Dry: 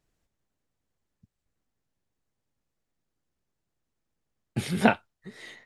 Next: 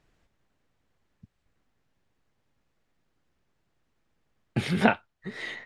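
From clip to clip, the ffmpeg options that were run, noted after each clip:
ffmpeg -i in.wav -af "lowpass=frequency=2900:poles=1,equalizer=frequency=2300:width=0.45:gain=4.5,acompressor=threshold=-42dB:ratio=1.5,volume=8dB" out.wav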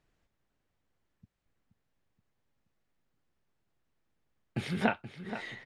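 ffmpeg -i in.wav -filter_complex "[0:a]asplit=2[link_01][link_02];[link_02]adelay=476,lowpass=frequency=4800:poles=1,volume=-11.5dB,asplit=2[link_03][link_04];[link_04]adelay=476,lowpass=frequency=4800:poles=1,volume=0.52,asplit=2[link_05][link_06];[link_06]adelay=476,lowpass=frequency=4800:poles=1,volume=0.52,asplit=2[link_07][link_08];[link_08]adelay=476,lowpass=frequency=4800:poles=1,volume=0.52,asplit=2[link_09][link_10];[link_10]adelay=476,lowpass=frequency=4800:poles=1,volume=0.52,asplit=2[link_11][link_12];[link_12]adelay=476,lowpass=frequency=4800:poles=1,volume=0.52[link_13];[link_01][link_03][link_05][link_07][link_09][link_11][link_13]amix=inputs=7:normalize=0,volume=-7dB" out.wav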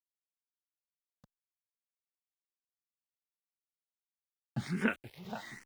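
ffmpeg -i in.wav -filter_complex "[0:a]aeval=exprs='val(0)*gte(abs(val(0)),0.00398)':channel_layout=same,asplit=2[link_01][link_02];[link_02]afreqshift=1.2[link_03];[link_01][link_03]amix=inputs=2:normalize=1" out.wav

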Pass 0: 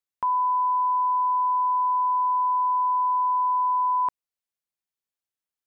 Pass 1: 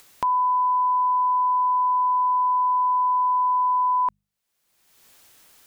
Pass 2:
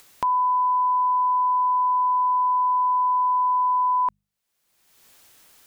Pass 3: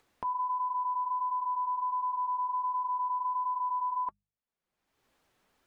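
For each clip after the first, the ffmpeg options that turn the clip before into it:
ffmpeg -i in.wav -af "bandreject=frequency=50:width_type=h:width=6,bandreject=frequency=100:width_type=h:width=6,bandreject=frequency=150:width_type=h:width=6,bandreject=frequency=200:width_type=h:width=6,acompressor=mode=upward:threshold=-28dB:ratio=2.5,volume=2dB" out.wav
ffmpeg -i in.wav -af anull out.wav
ffmpeg -i in.wav -af "lowpass=frequency=1100:poles=1,flanger=delay=2.3:depth=3.4:regen=-51:speed=1.4:shape=triangular,volume=-4dB" out.wav

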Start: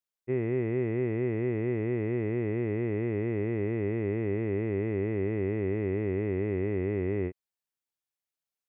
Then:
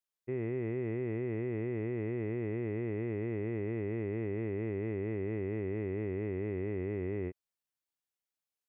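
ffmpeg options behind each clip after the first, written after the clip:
ffmpeg -i in.wav -af "alimiter=level_in=0.5dB:limit=-24dB:level=0:latency=1:release=31,volume=-0.5dB,volume=-2.5dB" out.wav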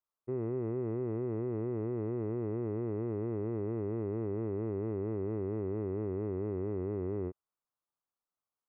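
ffmpeg -i in.wav -af "highshelf=frequency=1600:width_type=q:width=3:gain=-10" out.wav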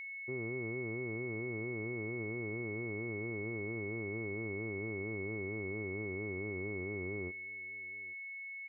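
ffmpeg -i in.wav -af "aeval=exprs='val(0)+0.0158*sin(2*PI*2200*n/s)':channel_layout=same,aecho=1:1:828:0.075,volume=-6dB" out.wav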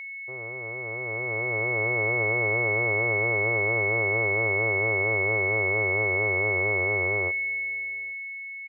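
ffmpeg -i in.wav -af "firequalizer=gain_entry='entry(130,0);entry(200,-18);entry(560,14);entry(1600,9)':delay=0.05:min_phase=1,dynaudnorm=framelen=210:gausssize=13:maxgain=12.5dB,volume=-2dB" out.wav

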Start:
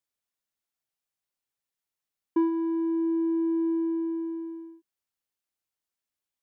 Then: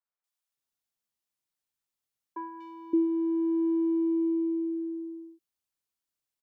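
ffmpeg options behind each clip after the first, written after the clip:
ffmpeg -i in.wav -filter_complex "[0:a]acrossover=split=560|1900[link_01][link_02][link_03];[link_03]adelay=240[link_04];[link_01]adelay=570[link_05];[link_05][link_02][link_04]amix=inputs=3:normalize=0" out.wav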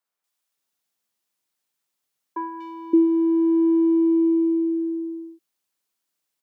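ffmpeg -i in.wav -af "highpass=160,volume=8.5dB" out.wav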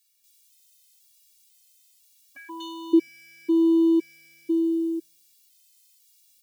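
ffmpeg -i in.wav -af "aexciter=amount=9.9:drive=4.5:freq=2000,equalizer=frequency=160:width_type=o:width=0.67:gain=5,equalizer=frequency=630:width_type=o:width=0.67:gain=-8,equalizer=frequency=1600:width_type=o:width=0.67:gain=-4,afftfilt=real='re*gt(sin(2*PI*1*pts/sr)*(1-2*mod(floor(b*sr/1024/270),2)),0)':imag='im*gt(sin(2*PI*1*pts/sr)*(1-2*mod(floor(b*sr/1024/270),2)),0)':win_size=1024:overlap=0.75" out.wav

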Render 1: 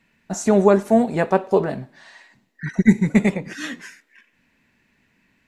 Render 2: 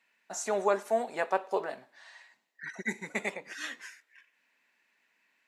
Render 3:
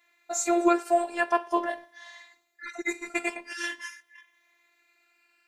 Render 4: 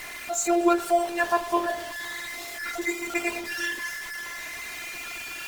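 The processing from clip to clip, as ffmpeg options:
ffmpeg -i in.wav -af "highpass=640,volume=-6.5dB" out.wav
ffmpeg -i in.wav -af "afftfilt=real='re*pow(10,9/40*sin(2*PI*(1.2*log(max(b,1)*sr/1024/100)/log(2)-(0.44)*(pts-256)/sr)))':imag='im*pow(10,9/40*sin(2*PI*(1.2*log(max(b,1)*sr/1024/100)/log(2)-(0.44)*(pts-256)/sr)))':win_size=1024:overlap=0.75,afftfilt=real='hypot(re,im)*cos(PI*b)':imag='0':win_size=512:overlap=0.75,volume=8.5dB" out.wav
ffmpeg -i in.wav -af "aeval=exprs='val(0)+0.5*0.0299*sgn(val(0))':channel_layout=same" -ar 48000 -c:a libopus -b:a 20k out.opus

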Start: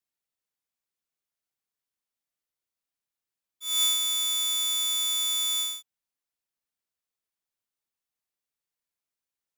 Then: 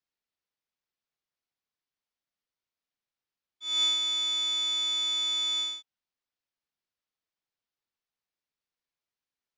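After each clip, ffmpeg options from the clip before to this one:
ffmpeg -i in.wav -af "lowpass=frequency=5600:width=0.5412,lowpass=frequency=5600:width=1.3066" out.wav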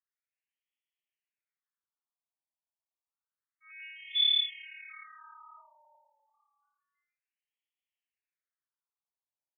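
ffmpeg -i in.wav -filter_complex "[0:a]asplit=5[link_01][link_02][link_03][link_04][link_05];[link_02]adelay=346,afreqshift=-36,volume=-3dB[link_06];[link_03]adelay=692,afreqshift=-72,volume=-13.2dB[link_07];[link_04]adelay=1038,afreqshift=-108,volume=-23.3dB[link_08];[link_05]adelay=1384,afreqshift=-144,volume=-33.5dB[link_09];[link_01][link_06][link_07][link_08][link_09]amix=inputs=5:normalize=0,crystalizer=i=6:c=0,afftfilt=real='re*between(b*sr/1024,750*pow(2500/750,0.5+0.5*sin(2*PI*0.29*pts/sr))/1.41,750*pow(2500/750,0.5+0.5*sin(2*PI*0.29*pts/sr))*1.41)':imag='im*between(b*sr/1024,750*pow(2500/750,0.5+0.5*sin(2*PI*0.29*pts/sr))/1.41,750*pow(2500/750,0.5+0.5*sin(2*PI*0.29*pts/sr))*1.41)':win_size=1024:overlap=0.75,volume=-8dB" out.wav

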